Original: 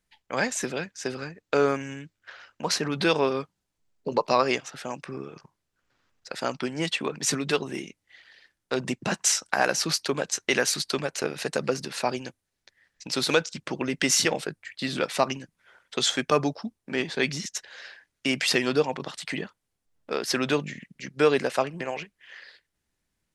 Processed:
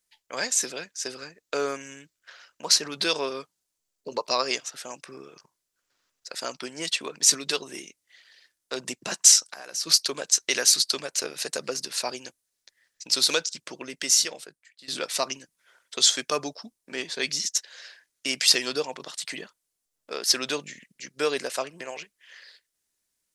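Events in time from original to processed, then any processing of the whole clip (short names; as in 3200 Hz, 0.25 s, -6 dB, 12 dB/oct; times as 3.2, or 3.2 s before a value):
9.43–9.87 compressor 8:1, threshold -32 dBFS
13.37–14.88 fade out, to -18.5 dB
whole clip: tone controls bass -11 dB, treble +12 dB; notch 810 Hz, Q 12; dynamic EQ 4600 Hz, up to +5 dB, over -31 dBFS, Q 1.4; gain -4.5 dB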